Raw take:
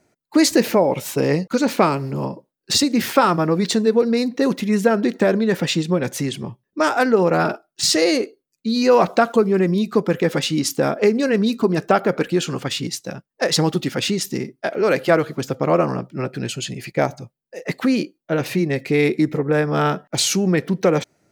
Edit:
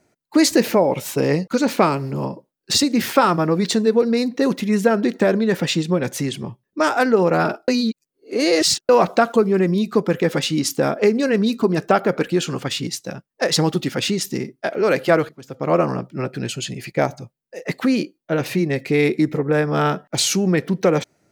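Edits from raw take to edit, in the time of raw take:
0:07.68–0:08.89: reverse
0:15.29–0:15.74: fade in quadratic, from −18.5 dB

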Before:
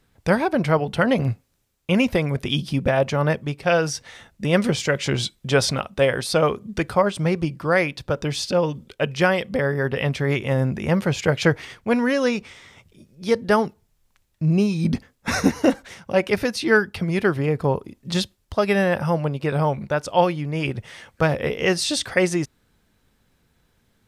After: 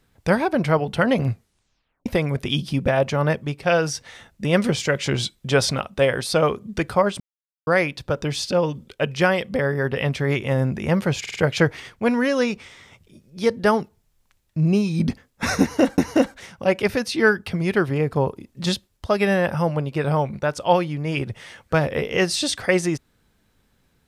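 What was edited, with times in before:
0:01.32: tape stop 0.74 s
0:07.20–0:07.67: silence
0:11.20: stutter 0.05 s, 4 plays
0:15.46–0:15.83: repeat, 2 plays

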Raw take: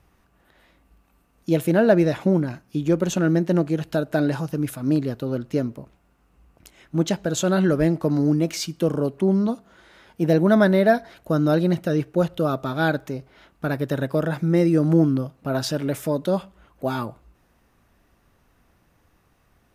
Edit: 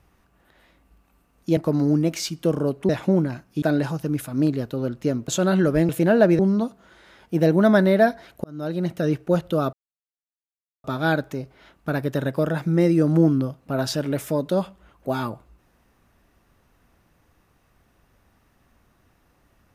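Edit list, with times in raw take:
0:01.57–0:02.07: swap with 0:07.94–0:09.26
0:02.80–0:04.11: remove
0:05.77–0:07.33: remove
0:11.31–0:11.95: fade in
0:12.60: splice in silence 1.11 s

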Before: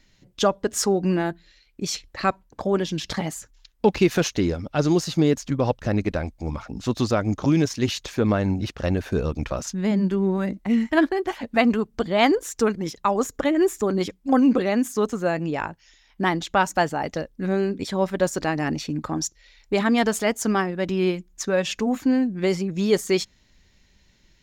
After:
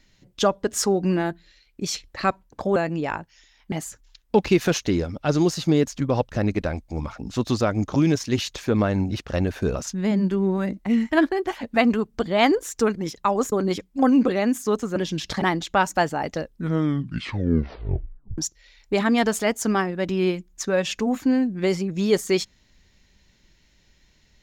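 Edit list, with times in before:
0:02.76–0:03.22: swap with 0:15.26–0:16.22
0:09.25–0:09.55: remove
0:13.32–0:13.82: remove
0:17.22: tape stop 1.96 s

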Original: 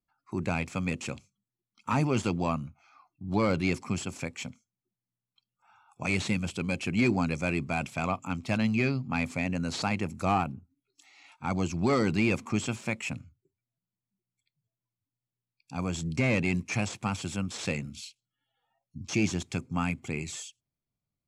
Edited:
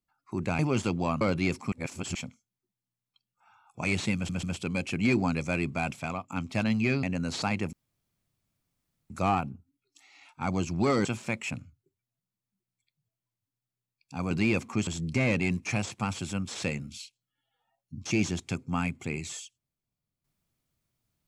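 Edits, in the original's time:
0:00.59–0:01.99: remove
0:02.61–0:03.43: remove
0:03.94–0:04.37: reverse
0:06.37: stutter 0.14 s, 3 plays
0:07.86–0:08.24: fade out linear, to −10.5 dB
0:08.97–0:09.43: remove
0:10.13: splice in room tone 1.37 s
0:12.08–0:12.64: move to 0:15.90

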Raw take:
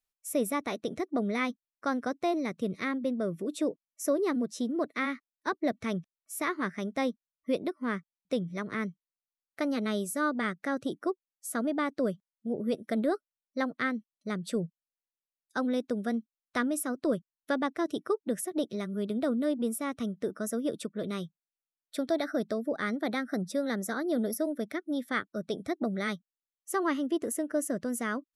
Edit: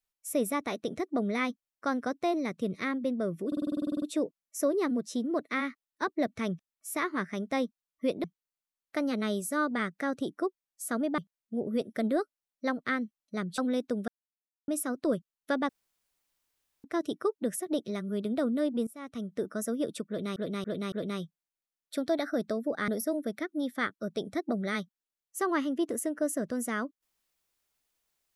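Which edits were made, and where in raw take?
0:03.47: stutter 0.05 s, 12 plays
0:07.69–0:08.88: remove
0:11.82–0:12.11: remove
0:14.51–0:15.58: remove
0:16.08–0:16.68: silence
0:17.69: splice in room tone 1.15 s
0:19.72–0:20.26: fade in, from −19.5 dB
0:20.93–0:21.21: repeat, 4 plays
0:22.89–0:24.21: remove

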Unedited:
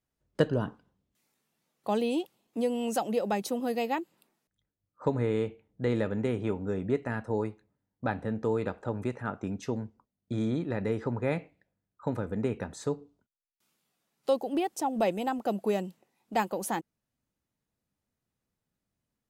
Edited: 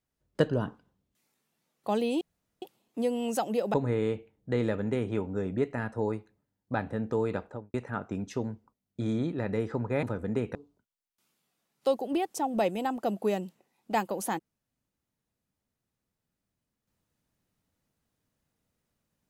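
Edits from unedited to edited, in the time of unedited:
0:02.21: splice in room tone 0.41 s
0:03.33–0:05.06: remove
0:08.71–0:09.06: fade out and dull
0:11.35–0:12.11: remove
0:12.63–0:12.97: remove

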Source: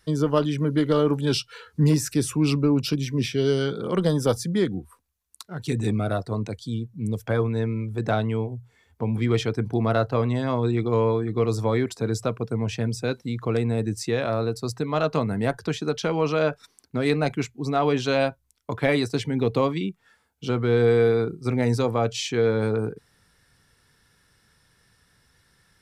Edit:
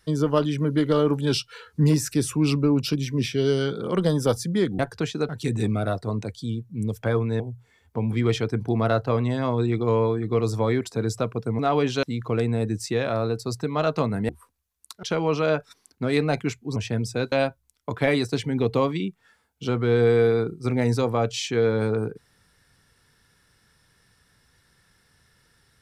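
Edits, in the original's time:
0:04.79–0:05.53: swap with 0:15.46–0:15.96
0:07.64–0:08.45: remove
0:12.64–0:13.20: swap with 0:17.69–0:18.13

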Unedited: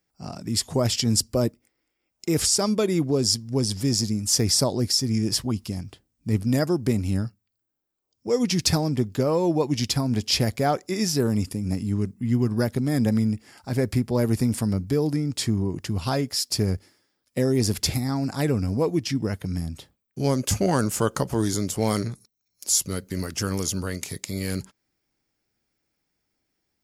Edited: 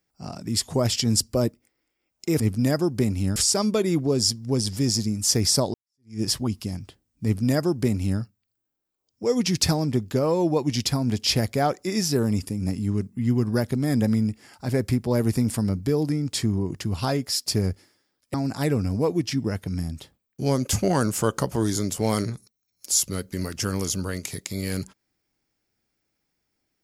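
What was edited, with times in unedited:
0:04.78–0:05.25: fade in exponential
0:06.28–0:07.24: duplicate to 0:02.40
0:17.38–0:18.12: remove

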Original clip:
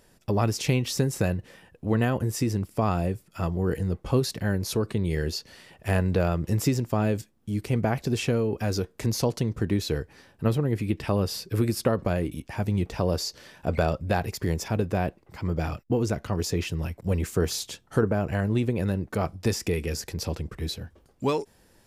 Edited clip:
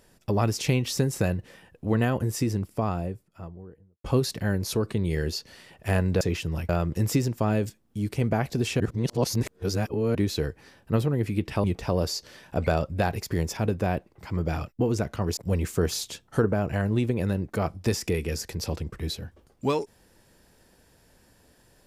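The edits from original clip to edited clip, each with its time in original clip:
0:02.30–0:04.04: fade out and dull
0:08.32–0:09.67: reverse
0:11.16–0:12.75: remove
0:16.48–0:16.96: move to 0:06.21

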